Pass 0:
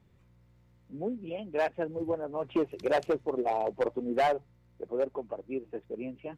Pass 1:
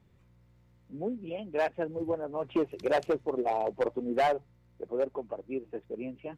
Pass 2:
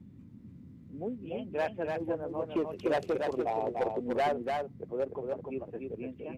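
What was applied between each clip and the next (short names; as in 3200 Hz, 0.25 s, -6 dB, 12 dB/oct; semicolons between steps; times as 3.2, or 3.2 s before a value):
nothing audible
echo 0.294 s -4 dB; band noise 78–260 Hz -48 dBFS; gain -3 dB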